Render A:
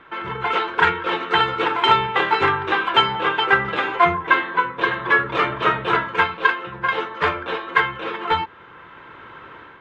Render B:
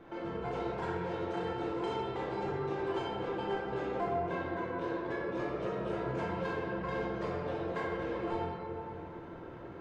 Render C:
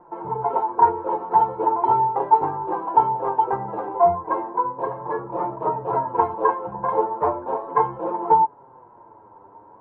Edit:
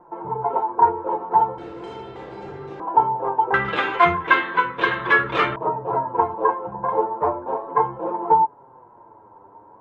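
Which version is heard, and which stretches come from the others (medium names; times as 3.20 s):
C
1.58–2.80 s: from B
3.54–5.56 s: from A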